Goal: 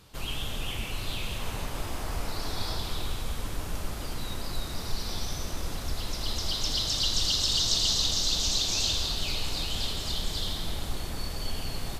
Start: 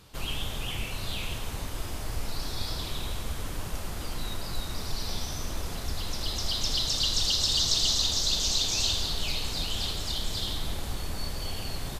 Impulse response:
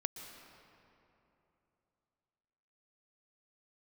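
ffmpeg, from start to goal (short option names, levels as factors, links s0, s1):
-filter_complex "[0:a]asettb=1/sr,asplit=3[s0][s1][s2];[s0]atrim=end=1.394[s3];[s1]atrim=start=1.39:end=2.78,asetpts=PTS-STARTPTS,afade=t=in:d=0.004:c=qsin,afade=t=out:st=1.386:d=0.004:c=qsin,equalizer=f=880:w=0.53:g=4.5[s4];[s2]atrim=start=2.776[s5];[s3][s4]acrossfade=d=0.004:c1=hsin:c2=qsin[s6];[s6][s5]acrossfade=d=0.004:c1=qsin:c2=hsin[s7];[1:a]atrim=start_sample=2205[s8];[s7][s8]afir=irnorm=-1:irlink=0"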